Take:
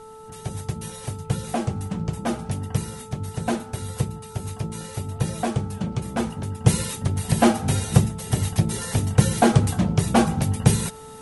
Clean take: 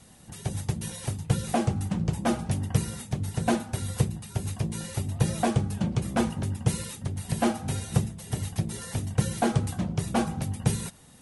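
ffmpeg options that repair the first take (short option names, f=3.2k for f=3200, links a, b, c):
-af "bandreject=f=438.7:t=h:w=4,bandreject=f=877.4:t=h:w=4,bandreject=f=1.3161k:t=h:w=4,agate=range=-21dB:threshold=-30dB,asetnsamples=n=441:p=0,asendcmd='6.64 volume volume -8dB',volume=0dB"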